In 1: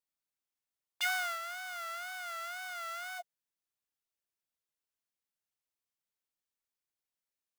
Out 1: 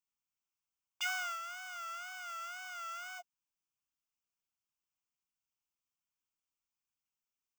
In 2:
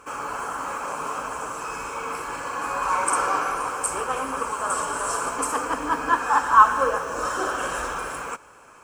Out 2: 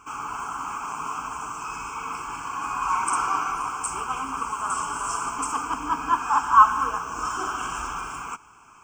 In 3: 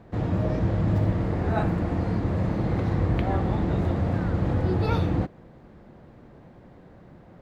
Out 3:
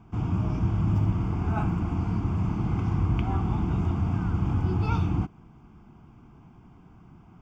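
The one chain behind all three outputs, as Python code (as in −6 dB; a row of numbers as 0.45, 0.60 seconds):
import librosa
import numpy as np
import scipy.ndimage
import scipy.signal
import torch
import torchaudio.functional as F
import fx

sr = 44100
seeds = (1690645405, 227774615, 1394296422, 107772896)

y = fx.fixed_phaser(x, sr, hz=2700.0, stages=8)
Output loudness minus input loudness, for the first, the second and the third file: −3.5, −1.5, −1.5 LU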